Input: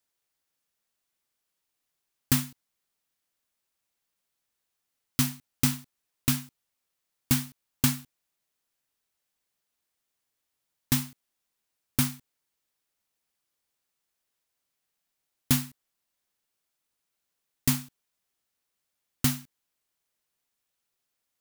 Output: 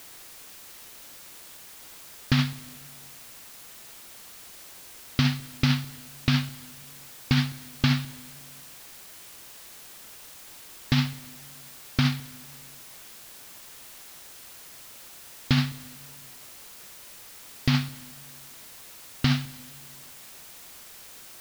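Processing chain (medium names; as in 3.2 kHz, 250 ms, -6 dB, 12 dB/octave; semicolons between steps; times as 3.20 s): steep low-pass 4.7 kHz; peaking EQ 260 Hz -4 dB; band-stop 1 kHz, Q 7.9; in parallel at +2.5 dB: compressor with a negative ratio -33 dBFS, ratio -0.5; on the sum: added noise white -50 dBFS; on a send at -21 dB: reverberation RT60 1.6 s, pre-delay 118 ms; on the sum: trim +3.5 dB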